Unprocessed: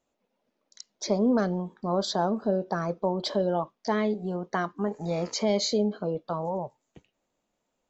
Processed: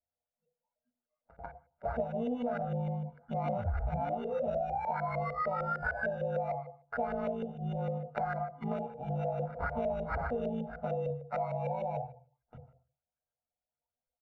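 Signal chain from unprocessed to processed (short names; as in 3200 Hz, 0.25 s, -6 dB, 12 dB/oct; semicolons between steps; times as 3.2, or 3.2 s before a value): painted sound fall, 1.91–3.41, 1600–3500 Hz -27 dBFS; granular stretch 1.8×, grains 37 ms; sample-rate reducer 3200 Hz, jitter 0%; spectral noise reduction 21 dB; on a send at -3 dB: reverb RT60 0.40 s, pre-delay 3 ms; on the sum: LFO low-pass saw up 6.6 Hz 500–1800 Hz; comb 1.4 ms, depth 75%; compressor 6:1, threshold -26 dBFS, peak gain reduction 14.5 dB; gain -5 dB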